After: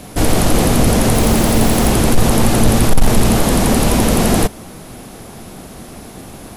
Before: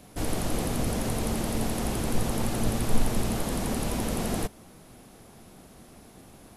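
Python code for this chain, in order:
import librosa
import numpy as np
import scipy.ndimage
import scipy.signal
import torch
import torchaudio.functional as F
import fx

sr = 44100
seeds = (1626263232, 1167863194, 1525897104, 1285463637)

p1 = fx.fold_sine(x, sr, drive_db=10, ceiling_db=-8.5)
p2 = x + F.gain(torch.from_numpy(p1), -10.0).numpy()
p3 = fx.quant_dither(p2, sr, seeds[0], bits=6, dither='none', at=(1.15, 1.9))
y = F.gain(torch.from_numpy(p3), 8.5).numpy()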